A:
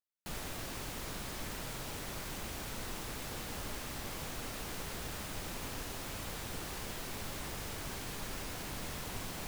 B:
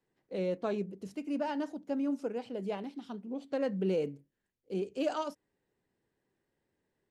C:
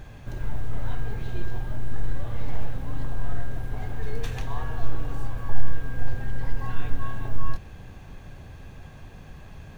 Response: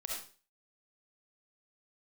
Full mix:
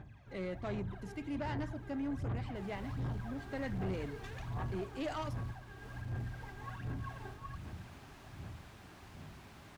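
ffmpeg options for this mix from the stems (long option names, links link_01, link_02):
-filter_complex "[0:a]adelay=2300,volume=-10.5dB[link_01];[1:a]equalizer=frequency=2000:width_type=o:width=0.31:gain=12.5,volume=-2.5dB[link_02];[2:a]dynaudnorm=framelen=220:gausssize=17:maxgain=11.5dB,aphaser=in_gain=1:out_gain=1:delay=2.6:decay=0.74:speed=1.3:type=sinusoidal,volume=-14.5dB[link_03];[link_01][link_03]amix=inputs=2:normalize=0,lowpass=frequency=2300:poles=1,acompressor=threshold=-14dB:ratio=2,volume=0dB[link_04];[link_02][link_04]amix=inputs=2:normalize=0,highpass=84,equalizer=frequency=490:width=4.7:gain=-10.5,asoftclip=type=tanh:threshold=-32dB"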